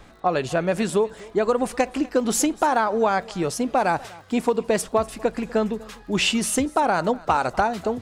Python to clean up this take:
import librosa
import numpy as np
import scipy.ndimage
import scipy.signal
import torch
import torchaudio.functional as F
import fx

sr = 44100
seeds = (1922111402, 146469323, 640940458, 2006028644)

y = fx.fix_declip(x, sr, threshold_db=-9.5)
y = fx.fix_declick_ar(y, sr, threshold=6.5)
y = fx.fix_echo_inverse(y, sr, delay_ms=246, level_db=-22.0)